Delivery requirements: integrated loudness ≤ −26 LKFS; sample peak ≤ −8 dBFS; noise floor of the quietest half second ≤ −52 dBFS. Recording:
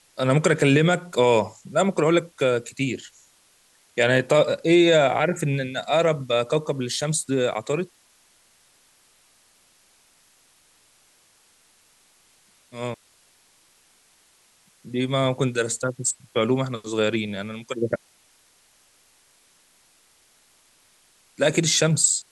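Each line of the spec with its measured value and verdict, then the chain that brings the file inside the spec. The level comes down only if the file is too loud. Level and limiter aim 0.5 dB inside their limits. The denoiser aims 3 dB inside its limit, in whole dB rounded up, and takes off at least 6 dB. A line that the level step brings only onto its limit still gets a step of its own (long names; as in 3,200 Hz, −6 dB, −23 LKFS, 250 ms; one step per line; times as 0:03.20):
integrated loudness −22.5 LKFS: out of spec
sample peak −5.0 dBFS: out of spec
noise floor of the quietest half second −60 dBFS: in spec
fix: level −4 dB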